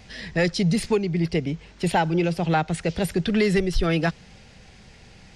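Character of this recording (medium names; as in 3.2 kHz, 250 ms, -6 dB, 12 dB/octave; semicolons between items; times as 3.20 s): noise floor -49 dBFS; spectral tilt -5.5 dB/octave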